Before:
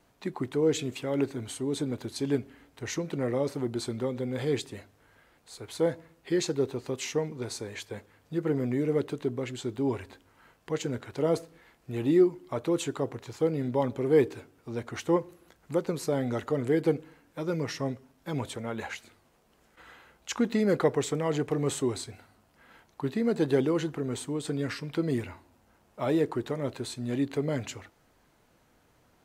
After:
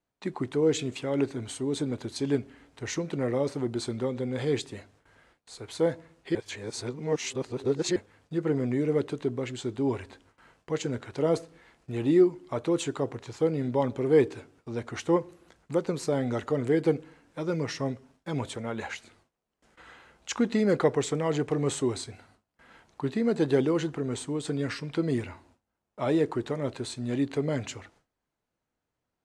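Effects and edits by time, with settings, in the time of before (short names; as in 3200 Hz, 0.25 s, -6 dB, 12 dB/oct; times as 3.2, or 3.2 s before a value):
6.35–7.96 reverse
whole clip: LPF 9700 Hz 24 dB/oct; gate with hold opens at -51 dBFS; gain +1 dB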